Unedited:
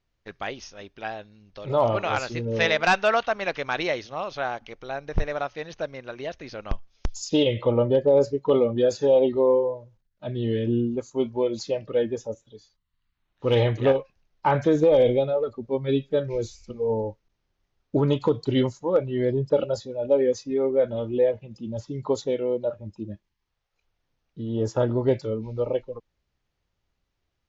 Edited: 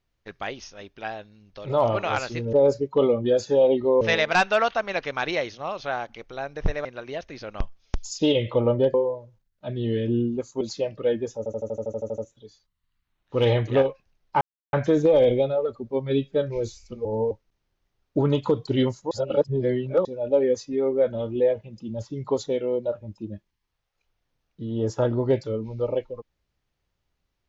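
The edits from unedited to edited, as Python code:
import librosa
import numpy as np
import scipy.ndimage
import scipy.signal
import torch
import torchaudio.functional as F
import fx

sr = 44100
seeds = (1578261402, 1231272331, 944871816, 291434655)

y = fx.edit(x, sr, fx.cut(start_s=5.37, length_s=0.59),
    fx.move(start_s=8.05, length_s=1.48, to_s=2.53),
    fx.cut(start_s=11.2, length_s=0.31),
    fx.stutter(start_s=12.28, slice_s=0.08, count=11),
    fx.insert_silence(at_s=14.51, length_s=0.32),
    fx.reverse_span(start_s=16.83, length_s=0.26),
    fx.reverse_span(start_s=18.89, length_s=0.94), tone=tone)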